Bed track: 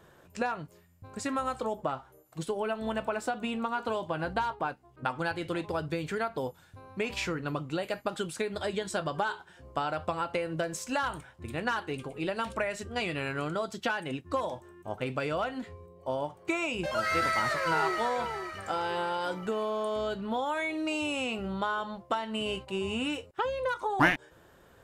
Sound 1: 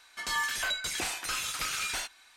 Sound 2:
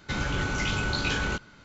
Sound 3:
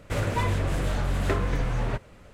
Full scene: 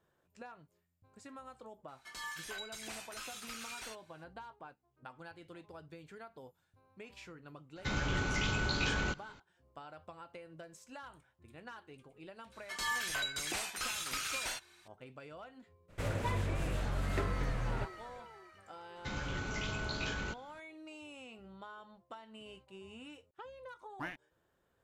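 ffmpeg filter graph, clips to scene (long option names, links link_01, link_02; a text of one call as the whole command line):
ffmpeg -i bed.wav -i cue0.wav -i cue1.wav -i cue2.wav -filter_complex "[1:a]asplit=2[link_01][link_02];[2:a]asplit=2[link_03][link_04];[0:a]volume=-19dB[link_05];[link_01]atrim=end=2.36,asetpts=PTS-STARTPTS,volume=-13dB,afade=type=in:duration=0.004:curve=hsin,afade=type=out:start_time=2.356:duration=0.004:curve=hsin,adelay=1880[link_06];[link_03]atrim=end=1.64,asetpts=PTS-STARTPTS,volume=-5.5dB,afade=type=in:duration=0.004:curve=hsin,afade=type=out:start_time=1.636:duration=0.004:curve=hsin,adelay=7760[link_07];[link_02]atrim=end=2.36,asetpts=PTS-STARTPTS,volume=-5dB,afade=type=in:duration=0.004:curve=hsin,afade=type=out:start_time=2.356:duration=0.004:curve=hsin,adelay=552132S[link_08];[3:a]atrim=end=2.33,asetpts=PTS-STARTPTS,volume=-9dB,afade=type=in:duration=0.02,afade=type=out:start_time=2.31:duration=0.02,adelay=700308S[link_09];[link_04]atrim=end=1.64,asetpts=PTS-STARTPTS,volume=-10.5dB,afade=type=in:duration=0.004:curve=hsin,afade=type=out:start_time=1.636:duration=0.004:curve=hsin,adelay=18960[link_10];[link_05][link_06][link_07][link_08][link_09][link_10]amix=inputs=6:normalize=0" out.wav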